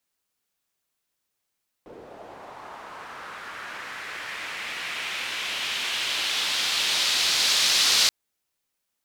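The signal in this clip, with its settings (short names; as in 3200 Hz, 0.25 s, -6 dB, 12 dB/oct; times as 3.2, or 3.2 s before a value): swept filtered noise pink, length 6.23 s bandpass, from 390 Hz, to 4500 Hz, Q 1.8, linear, gain ramp +26 dB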